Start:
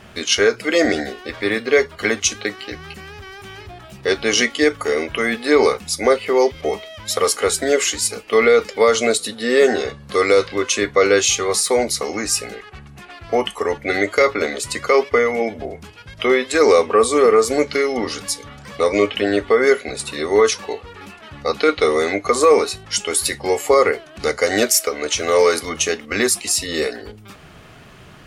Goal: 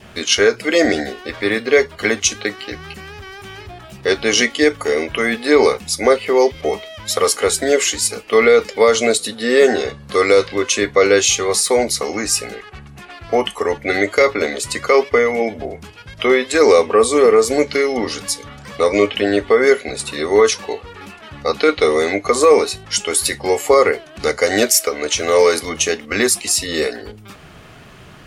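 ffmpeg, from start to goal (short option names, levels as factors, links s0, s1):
-af "adynamicequalizer=threshold=0.0141:dfrequency=1300:dqfactor=3.5:tfrequency=1300:tqfactor=3.5:attack=5:release=100:ratio=0.375:range=2.5:mode=cutabove:tftype=bell,volume=1.26"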